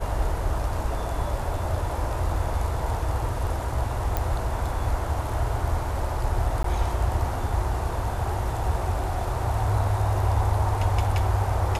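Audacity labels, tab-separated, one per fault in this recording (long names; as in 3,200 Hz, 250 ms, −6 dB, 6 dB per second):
4.170000	4.170000	click −11 dBFS
6.630000	6.640000	drop-out 13 ms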